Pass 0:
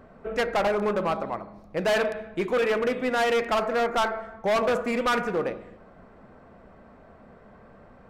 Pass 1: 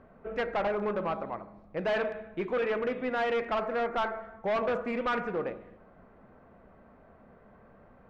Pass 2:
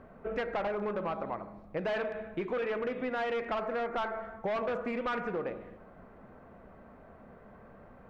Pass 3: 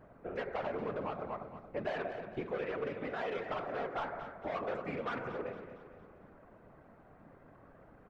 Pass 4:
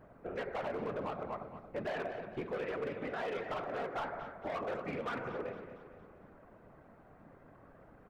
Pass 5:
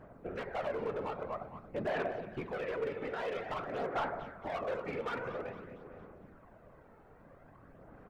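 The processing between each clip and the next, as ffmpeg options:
ffmpeg -i in.wav -af "lowpass=2900,volume=-5.5dB" out.wav
ffmpeg -i in.wav -af "acompressor=threshold=-34dB:ratio=6,volume=3dB" out.wav
ffmpeg -i in.wav -filter_complex "[0:a]afftfilt=real='hypot(re,im)*cos(2*PI*random(0))':imag='hypot(re,im)*sin(2*PI*random(1))':win_size=512:overlap=0.75,asplit=2[link_01][link_02];[link_02]aecho=0:1:229|458|687|916|1145:0.266|0.125|0.0588|0.0276|0.013[link_03];[link_01][link_03]amix=inputs=2:normalize=0,volume=1dB" out.wav
ffmpeg -i in.wav -af "volume=31.5dB,asoftclip=hard,volume=-31.5dB" out.wav
ffmpeg -i in.wav -af "aphaser=in_gain=1:out_gain=1:delay=2.3:decay=0.37:speed=0.5:type=sinusoidal" out.wav

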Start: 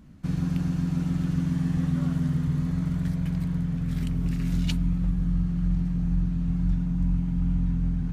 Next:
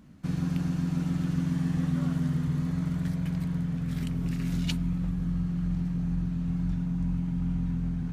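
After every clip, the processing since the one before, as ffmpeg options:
ffmpeg -i in.wav -af "lowshelf=frequency=81:gain=-11" out.wav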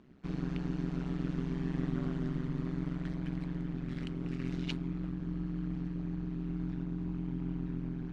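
ffmpeg -i in.wav -af "highpass=160,tremolo=f=130:d=0.947,lowpass=3900" out.wav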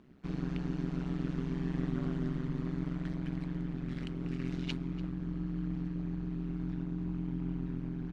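ffmpeg -i in.wav -af "aecho=1:1:292:0.119" out.wav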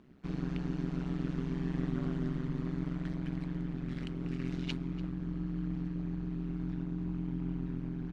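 ffmpeg -i in.wav -af anull out.wav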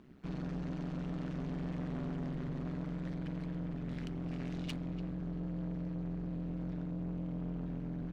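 ffmpeg -i in.wav -af "asoftclip=type=tanh:threshold=-35dB,volume=1.5dB" out.wav

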